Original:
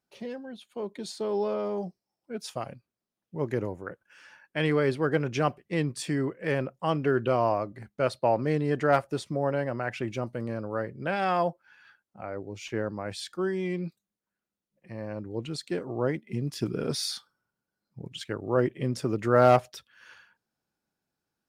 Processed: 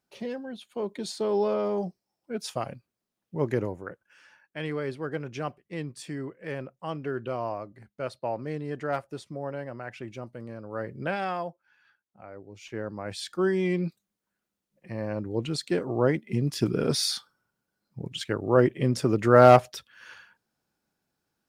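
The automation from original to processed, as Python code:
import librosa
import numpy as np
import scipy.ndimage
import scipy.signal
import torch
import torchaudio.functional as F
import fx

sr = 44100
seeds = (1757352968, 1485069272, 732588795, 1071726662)

y = fx.gain(x, sr, db=fx.line((3.47, 3.0), (4.61, -7.0), (10.62, -7.0), (10.98, 2.5), (11.45, -8.0), (12.46, -8.0), (13.47, 4.5)))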